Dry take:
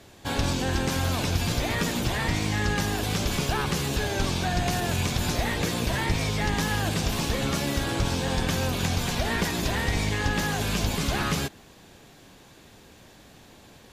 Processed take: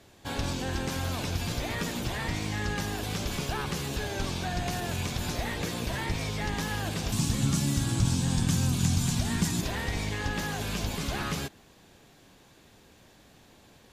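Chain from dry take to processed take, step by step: 7.12–9.61 graphic EQ 125/250/500/2000/8000 Hz +11/+6/-10/-4/+10 dB; gain -5.5 dB

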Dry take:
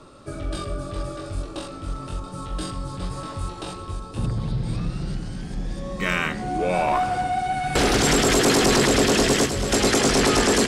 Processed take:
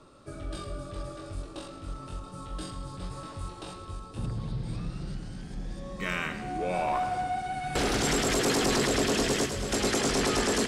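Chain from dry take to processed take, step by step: thinning echo 0.109 s, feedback 51%, level -12 dB; gain -8 dB

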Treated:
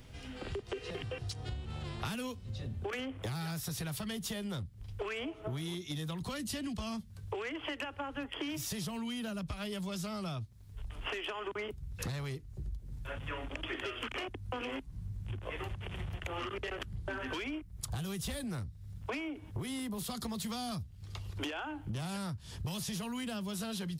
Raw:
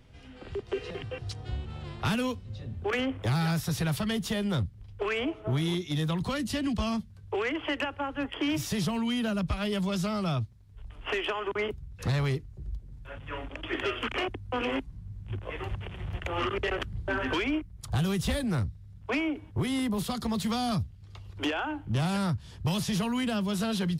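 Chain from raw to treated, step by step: high shelf 5400 Hz +9.5 dB; compressor 10:1, threshold -39 dBFS, peak gain reduction 15 dB; gain +3 dB

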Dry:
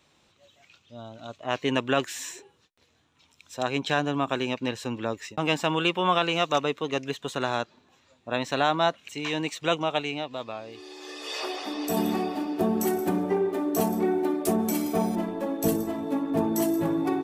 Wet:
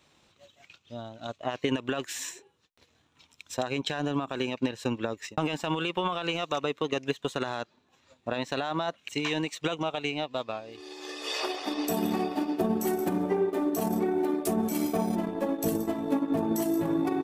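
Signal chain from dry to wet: limiter -20 dBFS, peak gain reduction 10.5 dB; transient shaper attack +6 dB, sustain -7 dB

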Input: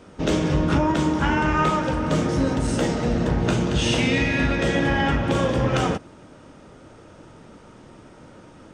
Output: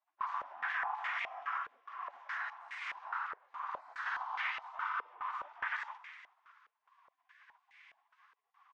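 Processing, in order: spectral gate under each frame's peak -25 dB weak; steep high-pass 230 Hz 72 dB/oct; resonant low shelf 660 Hz -13.5 dB, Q 3; limiter -30.5 dBFS, peak gain reduction 11 dB; 1.57–4.06 rotary speaker horn 1.2 Hz; frequency-shifting echo 0.188 s, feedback 58%, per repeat +30 Hz, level -15 dB; stepped low-pass 4.8 Hz 460–2100 Hz; gain -1.5 dB

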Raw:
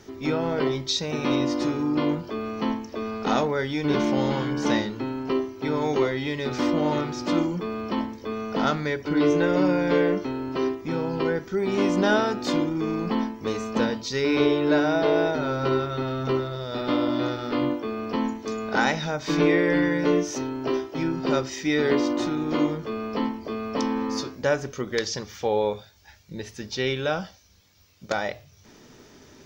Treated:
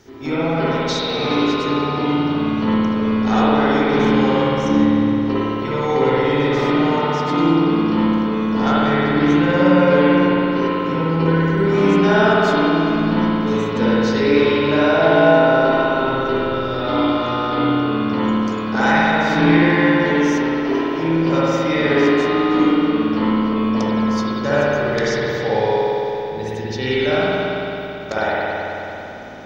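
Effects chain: spectral gain 4.43–5.23, 350–5100 Hz -12 dB; spring tank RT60 3.5 s, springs 55 ms, chirp 45 ms, DRR -10 dB; gain -1 dB

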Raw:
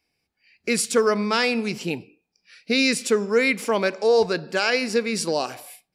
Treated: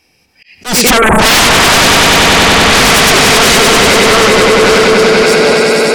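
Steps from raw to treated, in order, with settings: Doppler pass-by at 1.35, 15 m/s, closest 3.1 m; treble ducked by the level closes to 1900 Hz, closed at -23 dBFS; swelling echo 96 ms, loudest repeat 5, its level -6 dB; in parallel at +1 dB: negative-ratio compressor -33 dBFS, ratio -1; on the sum: spectral delete 0.98–1.19, 1000–8200 Hz; sine folder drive 19 dB, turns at -8.5 dBFS; auto swell 0.159 s; gain +5 dB

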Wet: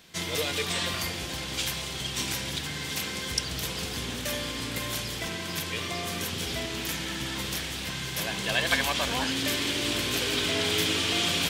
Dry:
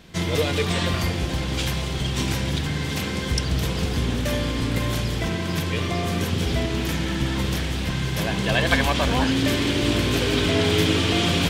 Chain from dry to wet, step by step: tilt +2.5 dB/oct; gain -6 dB

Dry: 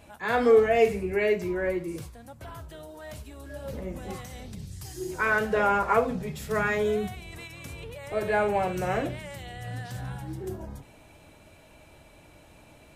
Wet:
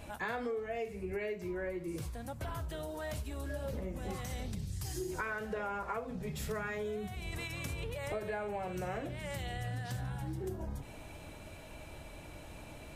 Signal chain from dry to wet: low shelf 63 Hz +7 dB; compressor 12:1, threshold -38 dBFS, peak gain reduction 23.5 dB; gain +3 dB

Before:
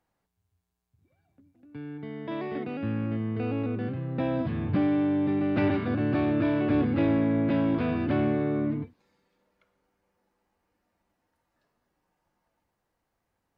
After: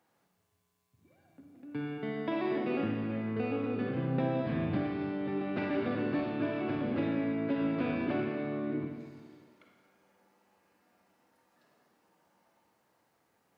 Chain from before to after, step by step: HPF 160 Hz 12 dB/oct; compressor 6:1, threshold -36 dBFS, peak gain reduction 14 dB; Schroeder reverb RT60 1.6 s, DRR 1.5 dB; gain +5.5 dB

